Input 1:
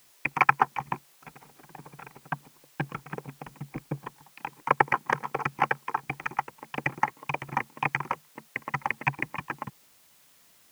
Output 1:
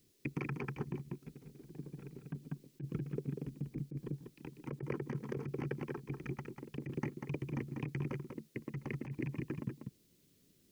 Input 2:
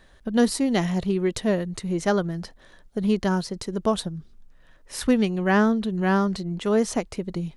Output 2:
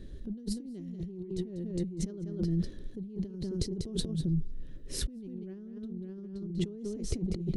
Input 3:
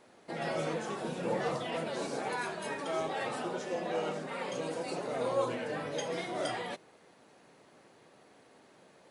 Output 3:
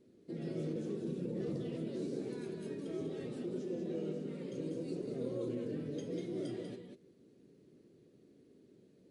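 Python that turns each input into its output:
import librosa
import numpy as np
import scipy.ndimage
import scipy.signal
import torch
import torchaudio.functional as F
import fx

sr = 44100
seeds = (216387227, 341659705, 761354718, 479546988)

y = fx.curve_eq(x, sr, hz=(390.0, 810.0, 4200.0, 8500.0), db=(0, -29, -15, -17))
y = y + 10.0 ** (-6.5 / 20.0) * np.pad(y, (int(193 * sr / 1000.0), 0))[:len(y)]
y = fx.over_compress(y, sr, threshold_db=-38.0, ratio=-1.0)
y = y * 10.0 ** (1.0 / 20.0)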